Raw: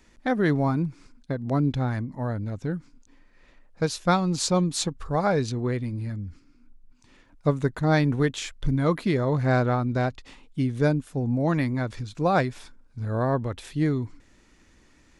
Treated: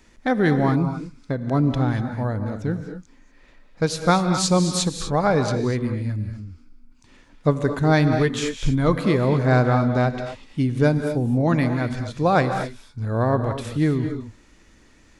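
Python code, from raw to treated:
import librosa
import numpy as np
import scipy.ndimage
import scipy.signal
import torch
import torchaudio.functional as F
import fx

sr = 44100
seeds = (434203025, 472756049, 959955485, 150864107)

y = fx.rev_gated(x, sr, seeds[0], gate_ms=270, shape='rising', drr_db=7.0)
y = F.gain(torch.from_numpy(y), 3.5).numpy()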